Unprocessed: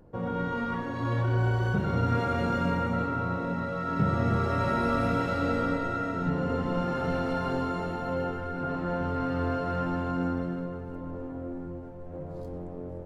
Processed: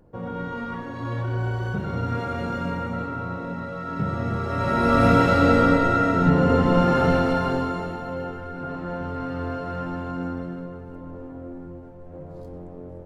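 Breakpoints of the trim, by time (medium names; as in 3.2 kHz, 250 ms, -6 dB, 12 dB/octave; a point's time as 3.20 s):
4.44 s -0.5 dB
5.07 s +10.5 dB
7.02 s +10.5 dB
8.12 s -0.5 dB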